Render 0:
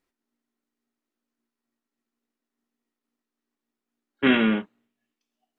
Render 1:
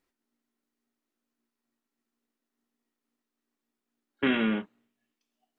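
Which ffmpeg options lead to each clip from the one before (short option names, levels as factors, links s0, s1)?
-af "acompressor=threshold=0.0447:ratio=2"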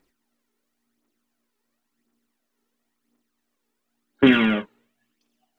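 -af "aphaser=in_gain=1:out_gain=1:delay=2.4:decay=0.52:speed=0.95:type=triangular,volume=2.37"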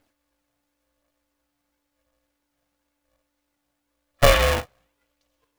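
-af "aeval=exprs='val(0)*sgn(sin(2*PI*290*n/s))':c=same"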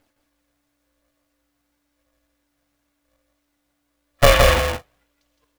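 -af "aecho=1:1:165:0.631,volume=1.33"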